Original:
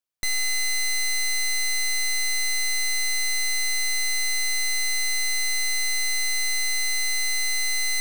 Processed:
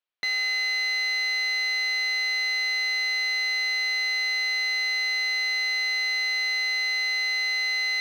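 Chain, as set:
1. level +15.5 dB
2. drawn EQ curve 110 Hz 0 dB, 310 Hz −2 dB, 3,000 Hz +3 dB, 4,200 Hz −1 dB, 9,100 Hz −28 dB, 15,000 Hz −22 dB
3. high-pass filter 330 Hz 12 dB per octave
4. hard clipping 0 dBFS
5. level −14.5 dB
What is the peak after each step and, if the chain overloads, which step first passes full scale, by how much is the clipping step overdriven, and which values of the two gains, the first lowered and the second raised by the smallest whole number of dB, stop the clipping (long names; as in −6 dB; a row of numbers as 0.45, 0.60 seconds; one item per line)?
−7.5, −3.5, −4.0, −4.0, −18.5 dBFS
no step passes full scale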